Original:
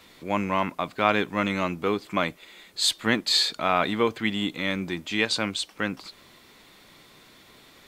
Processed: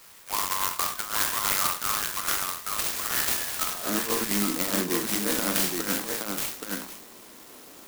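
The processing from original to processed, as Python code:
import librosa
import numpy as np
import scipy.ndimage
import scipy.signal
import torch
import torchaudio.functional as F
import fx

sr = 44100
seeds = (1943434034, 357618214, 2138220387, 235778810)

y = fx.spec_trails(x, sr, decay_s=0.49)
y = fx.highpass(y, sr, hz=fx.steps((0.0, 1100.0), (3.75, 200.0)), slope=24)
y = fx.dynamic_eq(y, sr, hz=1500.0, q=0.98, threshold_db=-37.0, ratio=4.0, max_db=5)
y = fx.env_lowpass_down(y, sr, base_hz=1600.0, full_db=-16.0)
y = fx.over_compress(y, sr, threshold_db=-27.0, ratio=-0.5)
y = fx.echo_multitap(y, sr, ms=(44, 824), db=(-10.5, -4.0))
y = fx.clock_jitter(y, sr, seeds[0], jitter_ms=0.13)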